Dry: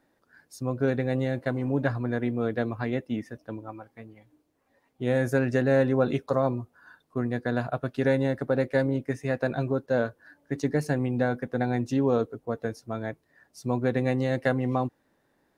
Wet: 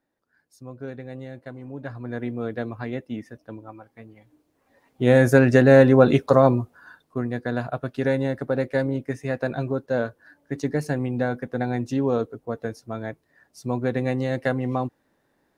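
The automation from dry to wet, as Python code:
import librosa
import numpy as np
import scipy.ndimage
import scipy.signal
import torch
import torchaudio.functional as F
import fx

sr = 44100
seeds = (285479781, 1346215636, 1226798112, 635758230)

y = fx.gain(x, sr, db=fx.line((1.79, -10.0), (2.19, -1.5), (3.77, -1.5), (5.11, 9.0), (6.55, 9.0), (7.26, 1.0)))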